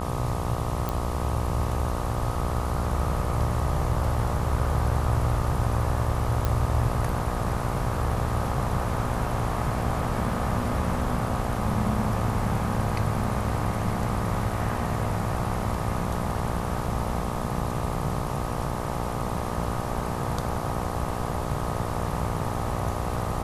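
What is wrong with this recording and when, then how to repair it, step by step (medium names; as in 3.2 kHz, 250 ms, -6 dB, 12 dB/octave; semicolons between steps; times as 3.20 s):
buzz 60 Hz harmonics 21 -32 dBFS
0.89 s: pop
6.45 s: pop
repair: de-click; de-hum 60 Hz, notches 21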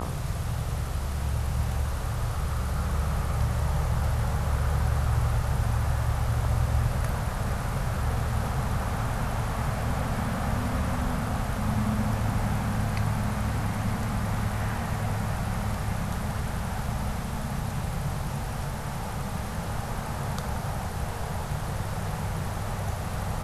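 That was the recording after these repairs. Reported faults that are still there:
nothing left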